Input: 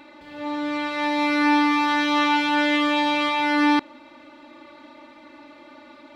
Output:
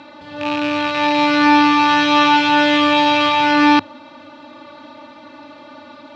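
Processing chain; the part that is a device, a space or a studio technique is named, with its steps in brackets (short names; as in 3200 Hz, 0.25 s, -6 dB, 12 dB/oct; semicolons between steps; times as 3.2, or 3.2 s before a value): car door speaker with a rattle (rattling part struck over -42 dBFS, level -19 dBFS; speaker cabinet 91–6500 Hz, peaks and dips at 100 Hz +10 dB, 160 Hz +4 dB, 350 Hz -8 dB, 2100 Hz -8 dB); gain +8.5 dB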